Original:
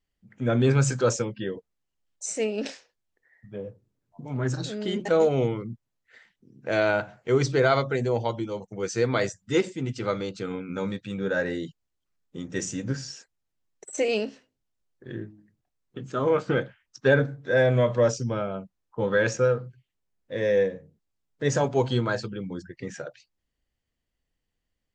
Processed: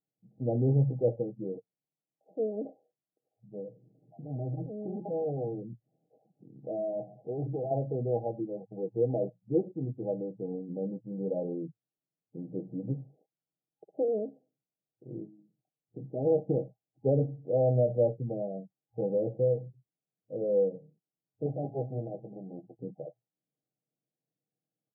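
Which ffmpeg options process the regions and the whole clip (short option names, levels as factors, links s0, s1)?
-filter_complex "[0:a]asettb=1/sr,asplit=3[s0][s1][s2];[s0]atrim=end=3.584[s3];[s1]atrim=start=3.58:end=7.71,asetpts=PTS-STARTPTS,afade=t=in:d=0.004:c=qsin,afade=t=out:st=4.126:d=0.004:c=qsin,volume=21.1,asoftclip=hard,volume=0.0473,acompressor=mode=upward:threshold=0.0126:ratio=2.5:attack=3.2:release=140:knee=2.83:detection=peak[s4];[s2]atrim=start=7.706[s5];[s3][s4]acrossfade=d=0.004:c1=hsin:c2=qsin[s6];[s6][s5]acrossfade=d=0.004:c1=qsin:c2=hsin,asettb=1/sr,asplit=3[s7][s8][s9];[s7]atrim=end=21.464[s10];[s8]atrim=start=21.46:end=22.8,asetpts=PTS-STARTPTS,afade=t=in:d=0.004:c=qsin,afade=t=out:st=1.336:d=0.004:c=qsin,aeval=exprs='max(val(0),0)':c=same,asplit=2[s11][s12];[s12]adelay=15,volume=0.251[s13];[s11][s13]amix=inputs=2:normalize=0,atrim=end_sample=59094[s14];[s9]atrim=start=22.796[s15];[s10][s14]acrossfade=d=0.004:c1=hsin:c2=qsin[s16];[s16][s15]acrossfade=d=0.004:c1=qsin:c2=hsin,aecho=1:1:6.4:0.34,afftfilt=real='re*between(b*sr/4096,110,820)':imag='im*between(b*sr/4096,110,820)':win_size=4096:overlap=0.75,volume=0.562"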